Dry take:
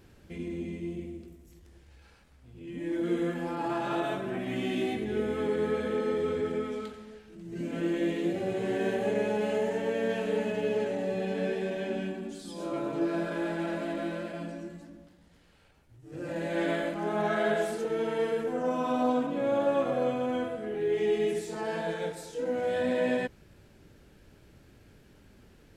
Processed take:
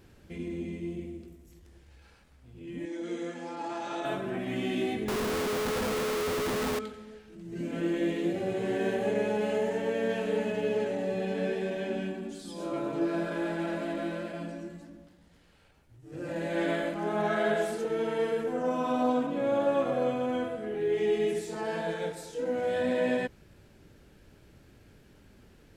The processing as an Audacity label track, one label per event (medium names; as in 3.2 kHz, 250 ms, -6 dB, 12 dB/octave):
2.850000	4.050000	cabinet simulation 320–8700 Hz, peaks and dips at 390 Hz -8 dB, 620 Hz -5 dB, 1.1 kHz -7 dB, 1.6 kHz -6 dB, 2.8 kHz -4 dB, 6.1 kHz +8 dB
5.080000	6.790000	Schmitt trigger flips at -44.5 dBFS